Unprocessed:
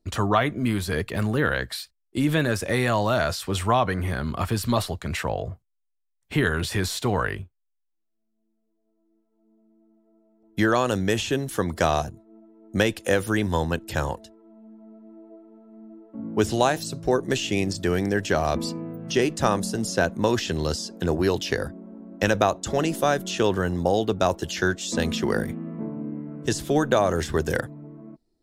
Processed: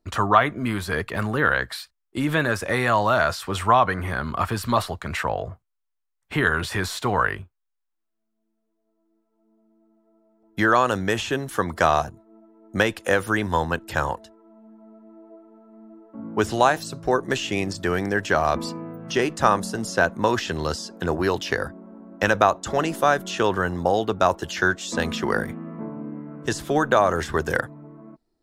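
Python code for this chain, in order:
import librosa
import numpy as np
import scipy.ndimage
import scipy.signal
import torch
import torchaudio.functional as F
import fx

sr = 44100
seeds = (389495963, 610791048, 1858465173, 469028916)

y = fx.peak_eq(x, sr, hz=1200.0, db=9.5, octaves=1.7)
y = F.gain(torch.from_numpy(y), -2.5).numpy()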